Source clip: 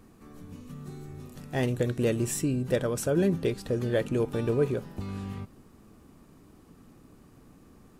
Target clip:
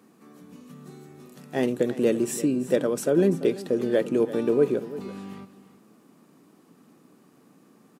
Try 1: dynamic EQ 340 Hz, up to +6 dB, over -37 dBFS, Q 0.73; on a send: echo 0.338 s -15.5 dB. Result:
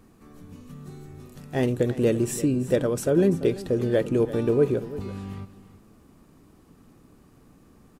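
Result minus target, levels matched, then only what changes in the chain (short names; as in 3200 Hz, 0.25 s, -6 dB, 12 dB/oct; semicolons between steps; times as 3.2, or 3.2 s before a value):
125 Hz band +7.0 dB
add after dynamic EQ: HPF 170 Hz 24 dB/oct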